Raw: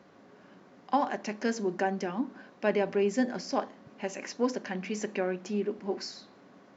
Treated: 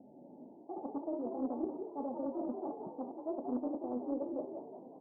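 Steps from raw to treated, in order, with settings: bit-reversed sample order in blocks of 32 samples; peaking EQ 95 Hz +4 dB 2.1 oct; de-hum 57.13 Hz, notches 30; reverse; compression 6:1, threshold -35 dBFS, peak gain reduction 13.5 dB; reverse; rippled Chebyshev low-pass 660 Hz, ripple 9 dB; on a send: frequency-shifting echo 244 ms, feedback 47%, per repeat +42 Hz, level -6 dB; on the sum: speed mistake 33 rpm record played at 45 rpm; loudspeaker Doppler distortion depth 0.26 ms; trim +6 dB

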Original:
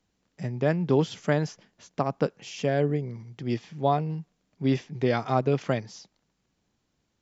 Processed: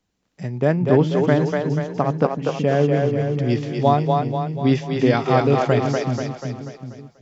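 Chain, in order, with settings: 0.58–2.88 s: treble shelf 3.4 kHz -11.5 dB; two-band feedback delay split 310 Hz, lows 378 ms, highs 243 ms, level -3 dB; level rider gain up to 7.5 dB

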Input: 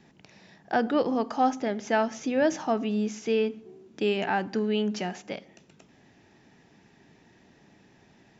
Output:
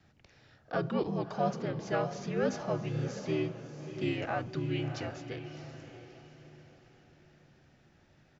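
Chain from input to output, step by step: frequency shift -62 Hz; harmony voices -4 st -3 dB; echo that smears into a reverb 655 ms, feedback 40%, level -10 dB; trim -8.5 dB

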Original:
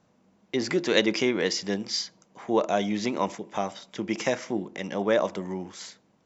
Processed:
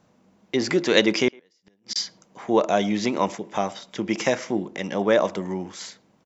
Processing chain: 1.28–1.96 s: inverted gate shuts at -22 dBFS, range -41 dB; speakerphone echo 110 ms, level -26 dB; trim +4 dB

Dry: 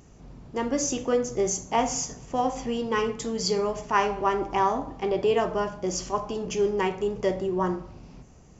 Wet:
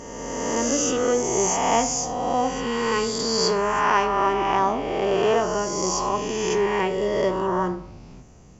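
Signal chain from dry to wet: reverse spectral sustain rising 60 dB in 1.98 s

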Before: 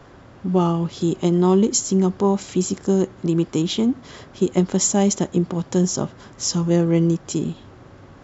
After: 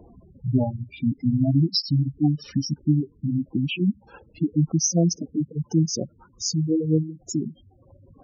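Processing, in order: pitch bend over the whole clip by -7 st ending unshifted; spectral gate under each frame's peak -10 dB strong; reverb removal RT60 1.6 s

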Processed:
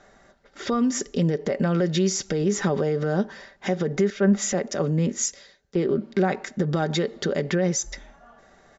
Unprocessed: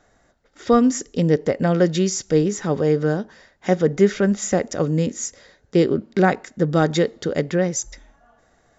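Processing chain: compression 6:1, threshold -20 dBFS, peak gain reduction 10.5 dB; peak limiter -20 dBFS, peak gain reduction 9.5 dB; low-pass 6 kHz 12 dB/octave; bass shelf 130 Hz -5.5 dB; comb 5.1 ms, depth 41%; 4.10–5.89 s: three bands expanded up and down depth 70%; trim +5.5 dB

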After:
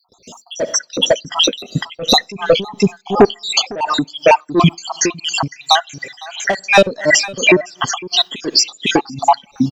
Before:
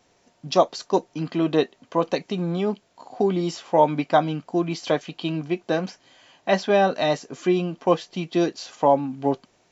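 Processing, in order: random holes in the spectrogram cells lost 75%; treble shelf 2.7 kHz +8.5 dB; saturation -20 dBFS, distortion -9 dB; 1.59–2.32 s: comb 1.5 ms, depth 55%; delay 505 ms -9.5 dB; Schroeder reverb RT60 0.74 s, combs from 26 ms, DRR 19.5 dB; gate with hold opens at -56 dBFS; reverb removal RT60 1.2 s; loudness maximiser +31.5 dB; logarithmic tremolo 2.8 Hz, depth 22 dB

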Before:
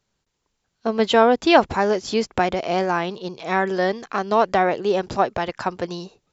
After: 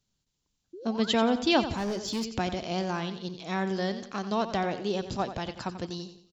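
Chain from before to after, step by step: 0.73–1.19 s: painted sound rise 330–2600 Hz -32 dBFS; high-order bell 930 Hz -9 dB 3 oct; feedback delay 89 ms, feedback 41%, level -11.5 dB; 1.74–2.25 s: hard clipper -24 dBFS, distortion -19 dB; trim -3 dB

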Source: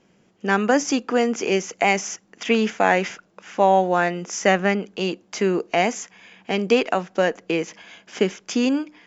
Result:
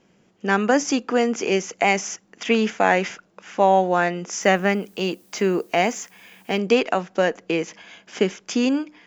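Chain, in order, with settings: 4.40–6.57 s: added noise blue -58 dBFS

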